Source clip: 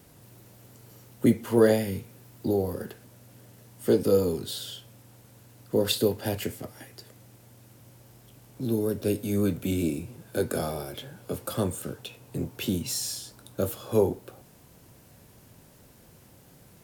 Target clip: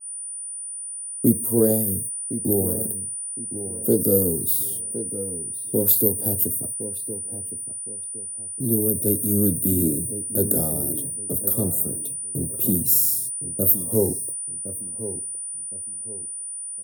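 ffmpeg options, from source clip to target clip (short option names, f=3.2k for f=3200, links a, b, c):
-filter_complex "[0:a]highpass=f=62:p=1,agate=range=-45dB:threshold=-42dB:ratio=16:detection=peak,firequalizer=gain_entry='entry(180,0);entry(880,-12);entry(1900,-25);entry(14000,14)':delay=0.05:min_phase=1,dynaudnorm=f=430:g=3:m=10dB,aeval=exprs='val(0)+0.0398*sin(2*PI*9400*n/s)':c=same,asplit=2[a][b];[b]adelay=1063,lowpass=f=3.5k:p=1,volume=-12dB,asplit=2[c][d];[d]adelay=1063,lowpass=f=3.5k:p=1,volume=0.3,asplit=2[e][f];[f]adelay=1063,lowpass=f=3.5k:p=1,volume=0.3[g];[a][c][e][g]amix=inputs=4:normalize=0,adynamicequalizer=threshold=0.0126:dfrequency=3100:dqfactor=0.7:tfrequency=3100:tqfactor=0.7:attack=5:release=100:ratio=0.375:range=2.5:mode=boostabove:tftype=highshelf,volume=-3.5dB"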